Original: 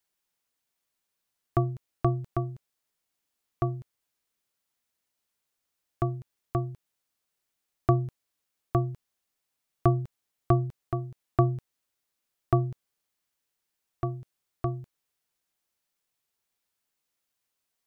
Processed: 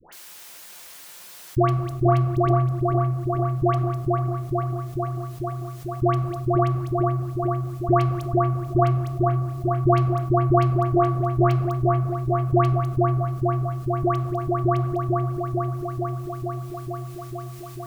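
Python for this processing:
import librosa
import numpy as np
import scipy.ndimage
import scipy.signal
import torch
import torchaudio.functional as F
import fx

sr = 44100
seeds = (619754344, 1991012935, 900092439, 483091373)

p1 = fx.low_shelf(x, sr, hz=350.0, db=-11.5)
p2 = 10.0 ** (-26.5 / 20.0) * np.tanh(p1 / 10.0 ** (-26.5 / 20.0))
p3 = p1 + F.gain(torch.from_numpy(p2), -3.0).numpy()
p4 = fx.dispersion(p3, sr, late='highs', ms=126.0, hz=1000.0)
p5 = p4 + fx.echo_wet_lowpass(p4, sr, ms=445, feedback_pct=61, hz=1600.0, wet_db=-4.0, dry=0)
p6 = fx.room_shoebox(p5, sr, seeds[0], volume_m3=2000.0, walls='furnished', distance_m=0.9)
p7 = fx.env_flatten(p6, sr, amount_pct=50)
y = F.gain(torch.from_numpy(p7), 6.0).numpy()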